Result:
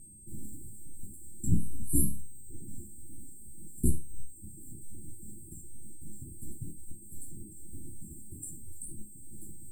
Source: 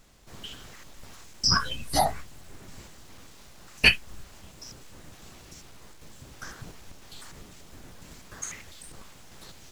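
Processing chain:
reverb reduction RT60 1.1 s
steady tone 8,400 Hz −59 dBFS
linear-phase brick-wall band-stop 390–7,300 Hz
resonators tuned to a chord C#2 minor, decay 0.33 s
level +16.5 dB

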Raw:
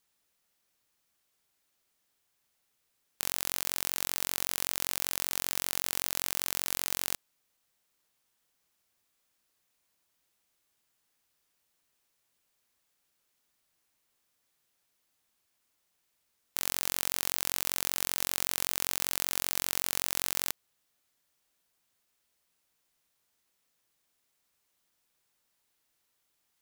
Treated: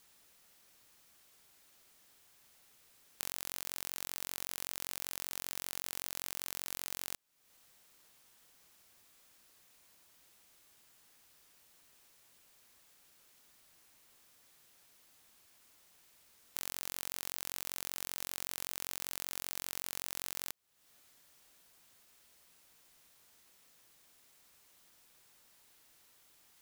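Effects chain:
downward compressor 4 to 1, threshold −49 dBFS, peak gain reduction 21 dB
level +11.5 dB

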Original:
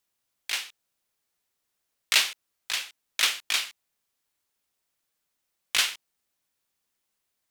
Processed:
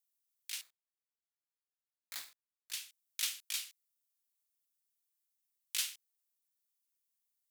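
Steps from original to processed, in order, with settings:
0:00.61–0:02.72: running median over 15 samples
first-order pre-emphasis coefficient 0.97
level −7.5 dB

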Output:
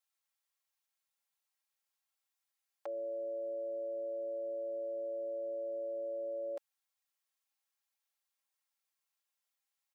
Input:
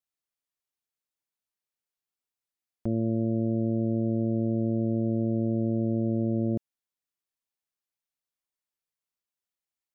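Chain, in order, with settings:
inverse Chebyshev high-pass filter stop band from 240 Hz, stop band 50 dB
comb filter 3.7 ms, depth 72%
level +2 dB

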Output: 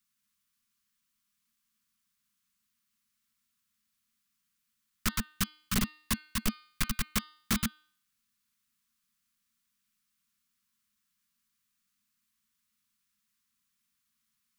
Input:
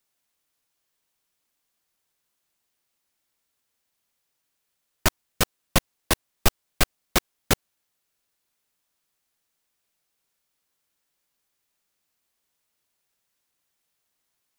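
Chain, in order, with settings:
delay that plays each chunk backwards 223 ms, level −6.5 dB
elliptic band-stop filter 230–1,100 Hz, stop band 40 dB
parametric band 220 Hz +10 dB 0.49 octaves
hum removal 305.5 Hz, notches 16
hard clipping −20.5 dBFS, distortion −5 dB
level −3 dB

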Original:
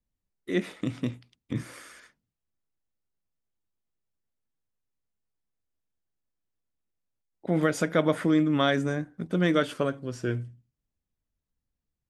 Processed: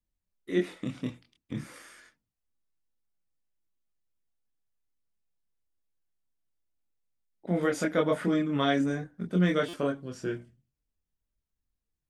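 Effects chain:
multi-voice chorus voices 6, 0.25 Hz, delay 25 ms, depth 3.4 ms
buffer that repeats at 0:09.68, samples 256, times 8

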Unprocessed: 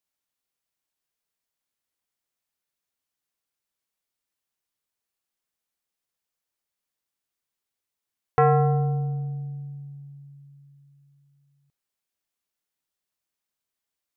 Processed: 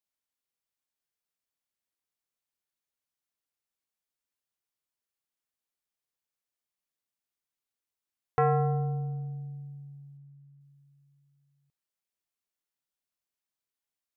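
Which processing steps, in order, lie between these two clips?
0:10.17–0:10.61: low-pass filter 2,200 Hz
level −6 dB

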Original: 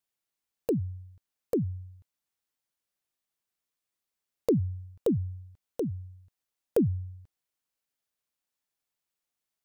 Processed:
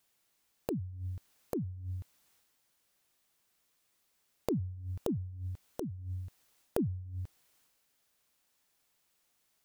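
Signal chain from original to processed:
gate with flip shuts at −32 dBFS, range −24 dB
transient designer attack −9 dB, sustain +5 dB
level +12 dB

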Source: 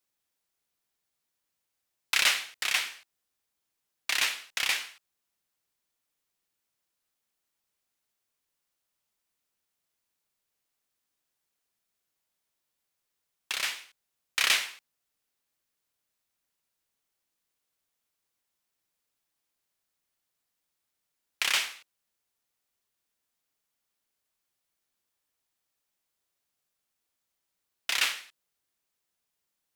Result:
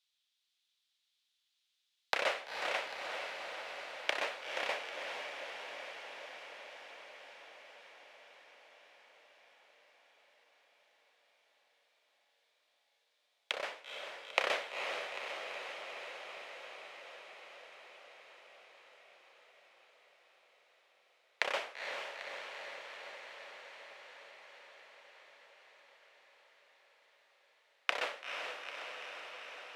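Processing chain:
envelope filter 550–3,600 Hz, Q 3.4, down, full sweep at −34.5 dBFS
feedback delay with all-pass diffusion 457 ms, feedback 76%, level −5.5 dB
level +11.5 dB

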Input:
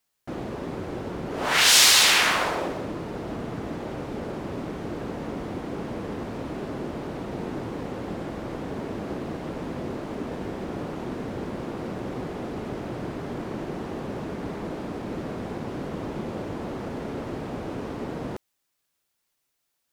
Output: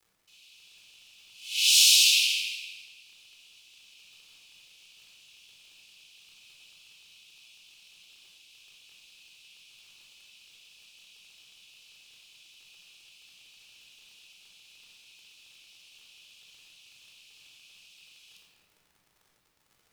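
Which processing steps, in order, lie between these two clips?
Butterworth high-pass 2,500 Hz 96 dB per octave
surface crackle 47 per second −44 dBFS
rectangular room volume 1,700 cubic metres, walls mixed, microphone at 4.1 metres
level −7.5 dB

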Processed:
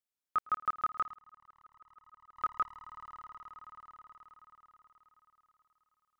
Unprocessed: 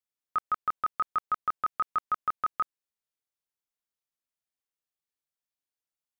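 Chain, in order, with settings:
echo that builds up and dies away 107 ms, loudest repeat 5, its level −17 dB
0:00.98–0:02.37: volume swells 458 ms
level −2.5 dB

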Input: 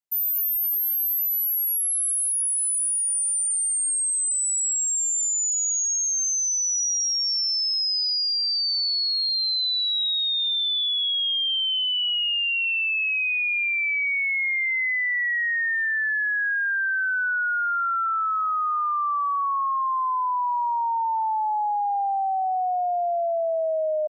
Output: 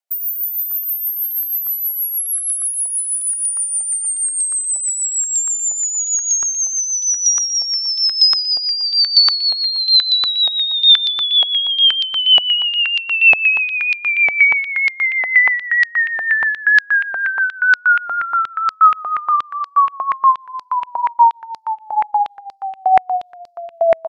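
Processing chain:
pitch shifter +1 semitone
rotating-speaker cabinet horn 6.3 Hz
high-pass on a step sequencer 8.4 Hz 720–4,600 Hz
level +6.5 dB

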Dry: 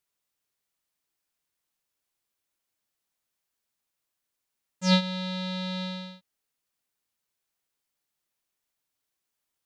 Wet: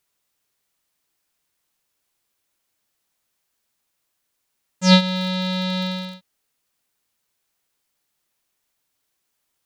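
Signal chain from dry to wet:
0:04.90–0:06.13: surface crackle 79 per second −40 dBFS
level +8.5 dB

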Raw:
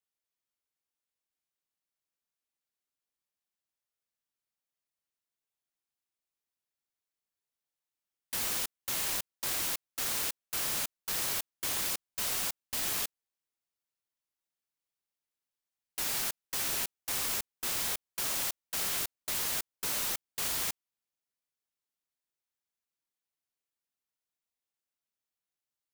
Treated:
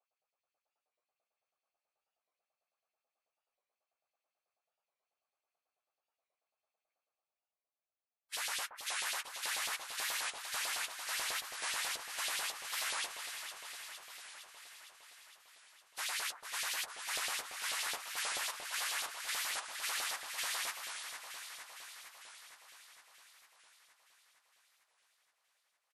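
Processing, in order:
adaptive Wiener filter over 25 samples
high-pass filter 240 Hz 6 dB per octave
noise reduction from a noise print of the clip's start 17 dB
dynamic equaliser 1,800 Hz, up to +6 dB, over −58 dBFS, Q 1
reversed playback
upward compression, threshold −57 dBFS
reversed playback
phase-vocoder pitch shift with formants kept −10.5 semitones
auto-filter high-pass saw up 9.2 Hz 580–4,400 Hz
pitch-shifted copies added −4 semitones −10 dB, −3 semitones −16 dB
on a send: delay that swaps between a low-pass and a high-pass 230 ms, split 1,300 Hz, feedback 82%, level −6 dB
on the sum: wow of a warped record 45 rpm, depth 160 cents
level −5 dB

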